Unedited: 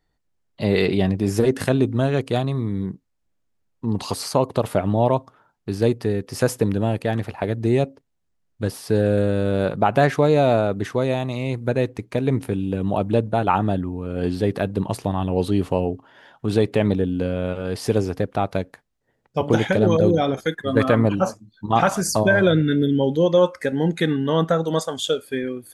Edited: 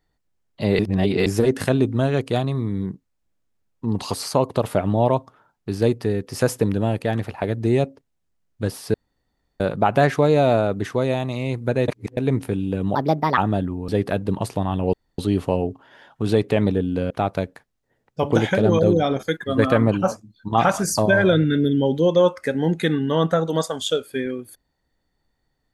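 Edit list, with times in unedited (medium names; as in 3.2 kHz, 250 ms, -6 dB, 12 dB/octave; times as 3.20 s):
0.79–1.26 s: reverse
8.94–9.60 s: room tone
11.88–12.17 s: reverse
12.95–13.53 s: speed 137%
14.04–14.37 s: delete
15.42 s: insert room tone 0.25 s
17.34–18.28 s: delete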